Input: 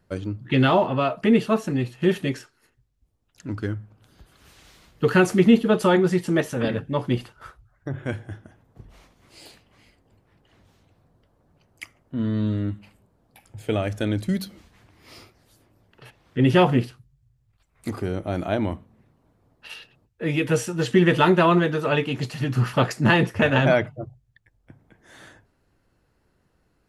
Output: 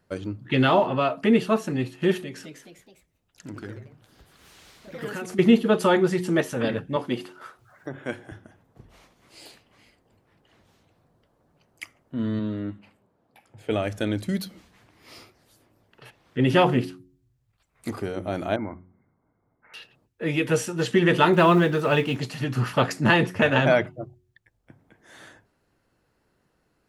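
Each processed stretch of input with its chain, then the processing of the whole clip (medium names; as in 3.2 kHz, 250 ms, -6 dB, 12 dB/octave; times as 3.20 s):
2.22–5.39 s: compression 3:1, threshold -33 dBFS + ever faster or slower copies 214 ms, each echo +2 st, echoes 3, each echo -6 dB
6.96–8.32 s: high-pass 200 Hz + upward compressor, threshold -40 dBFS
12.39–13.71 s: high-pass 160 Hz 6 dB/octave + treble shelf 4.3 kHz -11.5 dB
18.56–19.74 s: block-companded coder 5-bit + rippled Chebyshev low-pass 2.2 kHz, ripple 9 dB + comb 0.9 ms, depth 60%
21.33–22.17 s: companding laws mixed up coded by mu + bass shelf 190 Hz +5 dB
whole clip: bass shelf 100 Hz -9.5 dB; de-hum 90.95 Hz, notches 4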